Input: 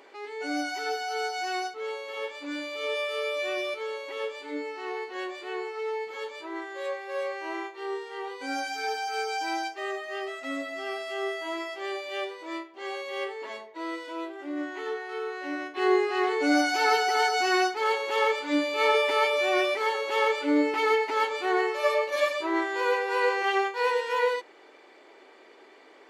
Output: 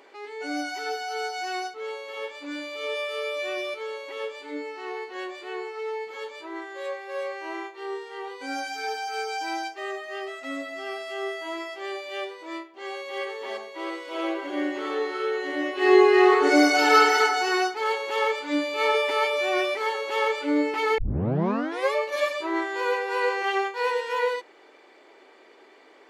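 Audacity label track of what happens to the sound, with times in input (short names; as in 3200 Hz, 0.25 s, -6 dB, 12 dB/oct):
12.760000	13.240000	echo throw 0.33 s, feedback 75%, level -3.5 dB
14.050000	17.180000	reverb throw, RT60 1.1 s, DRR -5.5 dB
20.980000	20.980000	tape start 0.96 s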